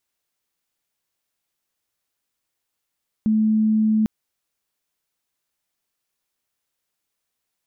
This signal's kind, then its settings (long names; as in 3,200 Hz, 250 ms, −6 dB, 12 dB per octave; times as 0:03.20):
tone sine 217 Hz −15 dBFS 0.80 s